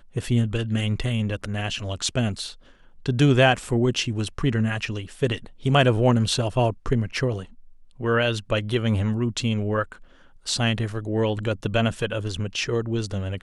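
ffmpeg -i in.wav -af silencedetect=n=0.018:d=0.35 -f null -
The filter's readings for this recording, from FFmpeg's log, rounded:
silence_start: 2.52
silence_end: 3.06 | silence_duration: 0.54
silence_start: 7.45
silence_end: 8.00 | silence_duration: 0.55
silence_start: 9.93
silence_end: 10.47 | silence_duration: 0.54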